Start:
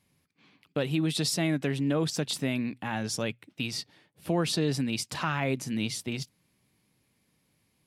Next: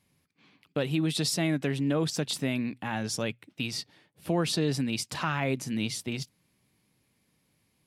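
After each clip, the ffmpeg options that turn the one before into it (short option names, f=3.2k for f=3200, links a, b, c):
-af anull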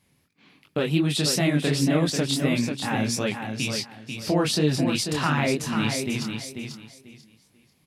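-filter_complex "[0:a]flanger=delay=20:depth=7.4:speed=2.8,asplit=2[a][b];[b]aecho=0:1:491|982|1473:0.473|0.109|0.025[c];[a][c]amix=inputs=2:normalize=0,volume=8dB"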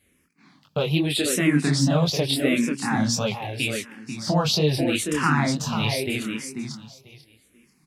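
-filter_complex "[0:a]asplit=2[a][b];[b]afreqshift=-0.81[c];[a][c]amix=inputs=2:normalize=1,volume=4.5dB"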